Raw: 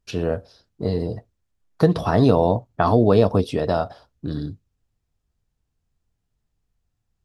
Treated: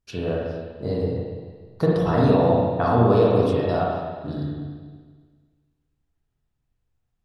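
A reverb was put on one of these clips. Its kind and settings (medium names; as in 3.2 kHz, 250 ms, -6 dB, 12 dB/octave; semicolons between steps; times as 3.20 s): spring tank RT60 1.6 s, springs 34/42/49 ms, chirp 25 ms, DRR -4 dB; trim -6 dB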